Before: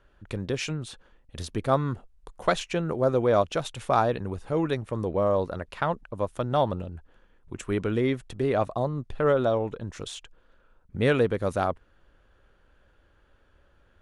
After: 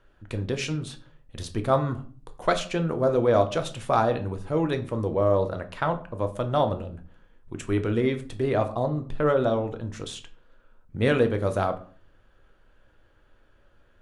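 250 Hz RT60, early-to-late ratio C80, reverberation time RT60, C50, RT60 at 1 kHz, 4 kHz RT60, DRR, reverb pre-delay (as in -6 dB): 0.60 s, 19.0 dB, 0.45 s, 14.5 dB, 0.45 s, 0.30 s, 7.0 dB, 3 ms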